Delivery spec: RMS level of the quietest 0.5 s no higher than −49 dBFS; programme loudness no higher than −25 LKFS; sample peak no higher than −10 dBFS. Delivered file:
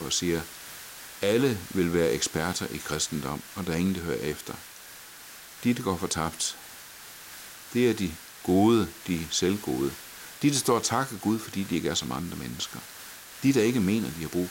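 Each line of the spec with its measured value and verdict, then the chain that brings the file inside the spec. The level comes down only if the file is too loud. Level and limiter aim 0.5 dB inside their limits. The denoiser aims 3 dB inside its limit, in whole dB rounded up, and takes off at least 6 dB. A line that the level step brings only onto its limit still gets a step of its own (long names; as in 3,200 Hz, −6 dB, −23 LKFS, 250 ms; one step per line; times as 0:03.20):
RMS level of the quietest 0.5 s −46 dBFS: out of spec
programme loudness −27.5 LKFS: in spec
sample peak −11.0 dBFS: in spec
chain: broadband denoise 6 dB, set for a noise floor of −46 dBFS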